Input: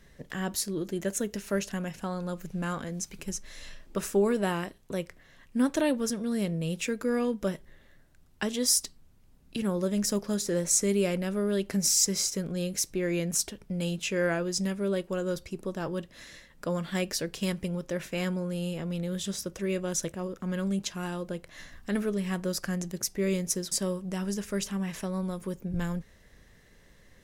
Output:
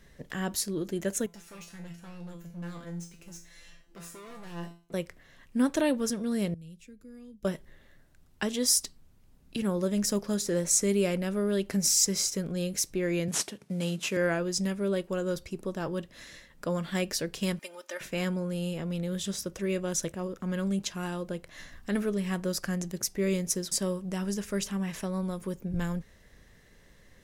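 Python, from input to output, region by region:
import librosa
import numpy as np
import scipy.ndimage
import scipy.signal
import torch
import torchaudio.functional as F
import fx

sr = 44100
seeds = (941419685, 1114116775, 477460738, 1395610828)

y = fx.chain(x, sr, fx.leveller(passes=1),
    fx.overload_stage(gain_db=30.5),
    fx.comb_fb(f0_hz=170.0, decay_s=0.37, harmonics='all', damping=0.0, mix_pct=90), at=(1.26, 4.94))
y = fx.chain(y, sr, fx.tone_stack(knobs='10-0-1'),
    fx.band_squash(depth_pct=40), at=(6.54, 7.45))
y = fx.chain(y, sr, fx.cvsd(bps=64000),
    fx.highpass(hz=110.0, slope=24), at=(13.28, 14.17))
y = fx.chain(y, sr, fx.highpass(hz=850.0, slope=12),
    fx.comb(ms=3.3, depth=0.84), at=(17.59, 18.01))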